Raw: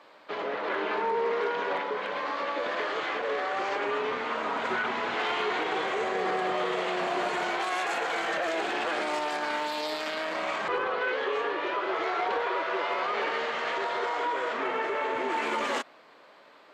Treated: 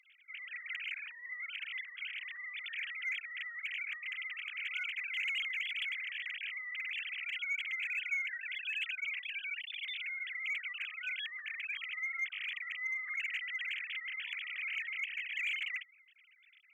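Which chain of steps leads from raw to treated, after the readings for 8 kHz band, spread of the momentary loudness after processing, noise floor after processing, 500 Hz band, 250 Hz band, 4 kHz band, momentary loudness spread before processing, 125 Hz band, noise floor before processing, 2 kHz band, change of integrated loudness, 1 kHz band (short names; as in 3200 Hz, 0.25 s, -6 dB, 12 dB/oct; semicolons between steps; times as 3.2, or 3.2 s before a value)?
under -15 dB, 6 LU, -64 dBFS, under -40 dB, under -40 dB, -5.0 dB, 3 LU, under -40 dB, -54 dBFS, -4.0 dB, -8.0 dB, -32.0 dB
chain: sine-wave speech; elliptic high-pass 2200 Hz, stop band 60 dB; in parallel at -7 dB: hard clip -38.5 dBFS, distortion -17 dB; on the sum: gain +1.5 dB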